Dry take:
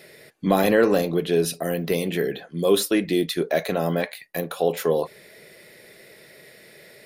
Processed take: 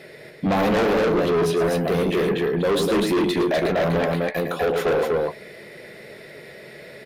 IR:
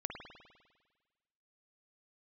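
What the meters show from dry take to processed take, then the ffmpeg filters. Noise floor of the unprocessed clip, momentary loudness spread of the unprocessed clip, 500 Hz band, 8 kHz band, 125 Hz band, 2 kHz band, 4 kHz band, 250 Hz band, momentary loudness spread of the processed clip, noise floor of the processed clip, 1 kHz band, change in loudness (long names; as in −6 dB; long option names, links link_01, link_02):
−50 dBFS, 10 LU, +2.0 dB, −5.0 dB, +3.0 dB, +3.0 dB, +0.5 dB, +1.5 dB, 21 LU, −43 dBFS, +4.0 dB, +1.5 dB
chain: -filter_complex "[0:a]lowpass=frequency=2200:poles=1,aecho=1:1:107.9|247.8:0.355|0.708,asoftclip=type=tanh:threshold=-19dB,asplit=2[link_01][link_02];[link_02]adelay=14,volume=-13dB[link_03];[link_01][link_03]amix=inputs=2:normalize=0,aeval=exprs='0.141*sin(PI/2*1.41*val(0)/0.141)':channel_layout=same"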